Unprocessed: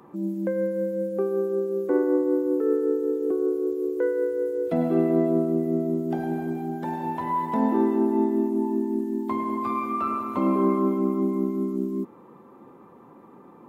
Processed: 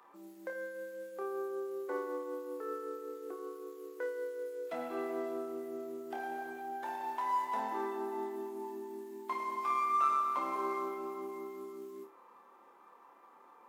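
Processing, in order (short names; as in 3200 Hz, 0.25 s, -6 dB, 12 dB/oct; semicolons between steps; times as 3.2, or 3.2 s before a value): median filter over 9 samples; HPF 930 Hz 12 dB/oct; flutter echo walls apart 4.8 m, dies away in 0.28 s; gain -3 dB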